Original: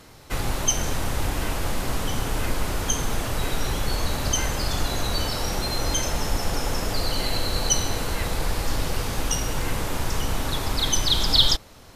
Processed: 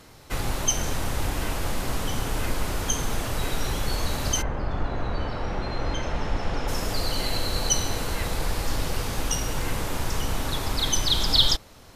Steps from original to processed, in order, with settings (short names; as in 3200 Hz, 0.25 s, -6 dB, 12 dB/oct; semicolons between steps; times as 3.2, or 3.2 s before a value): 4.41–6.67 LPF 1300 Hz -> 3500 Hz 12 dB/oct; gain -1.5 dB